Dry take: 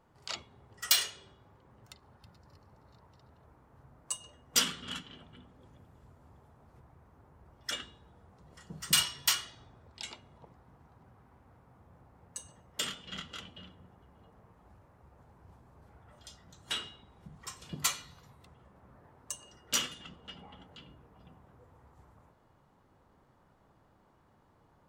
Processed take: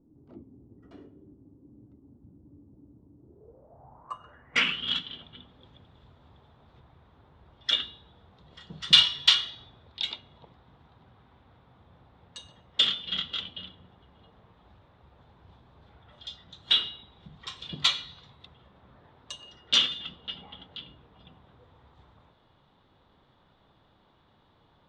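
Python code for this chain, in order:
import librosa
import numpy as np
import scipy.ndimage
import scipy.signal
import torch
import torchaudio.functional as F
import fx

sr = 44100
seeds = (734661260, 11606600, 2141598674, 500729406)

y = fx.filter_sweep_lowpass(x, sr, from_hz=290.0, to_hz=3600.0, start_s=3.17, end_s=4.91, q=7.0)
y = y * 10.0 ** (1.5 / 20.0)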